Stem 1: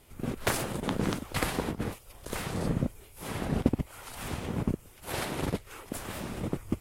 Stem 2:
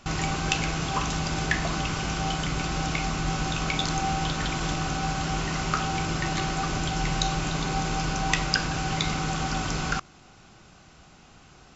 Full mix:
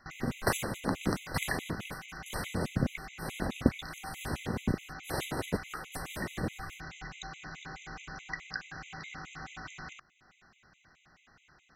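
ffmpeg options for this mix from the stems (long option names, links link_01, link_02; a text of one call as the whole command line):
ffmpeg -i stem1.wav -i stem2.wav -filter_complex "[0:a]agate=range=-23dB:threshold=-47dB:ratio=16:detection=peak,volume=0.5dB[link_01];[1:a]equalizer=frequency=1800:width=1.4:gain=14,acompressor=threshold=-35dB:ratio=1.5,volume=-12.5dB[link_02];[link_01][link_02]amix=inputs=2:normalize=0,afftfilt=real='re*gt(sin(2*PI*4.7*pts/sr)*(1-2*mod(floor(b*sr/1024/2000),2)),0)':imag='im*gt(sin(2*PI*4.7*pts/sr)*(1-2*mod(floor(b*sr/1024/2000),2)),0)':win_size=1024:overlap=0.75" out.wav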